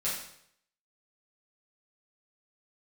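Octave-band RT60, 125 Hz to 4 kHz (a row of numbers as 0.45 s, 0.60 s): 0.75 s, 0.65 s, 0.70 s, 0.65 s, 0.65 s, 0.65 s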